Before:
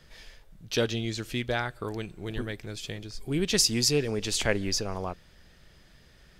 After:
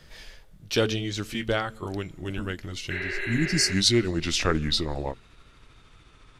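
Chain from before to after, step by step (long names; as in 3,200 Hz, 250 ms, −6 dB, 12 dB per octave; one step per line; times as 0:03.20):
pitch glide at a constant tempo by −6 semitones starting unshifted
hum removal 220.5 Hz, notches 2
healed spectral selection 0:02.93–0:03.72, 330–4,300 Hz after
level +4 dB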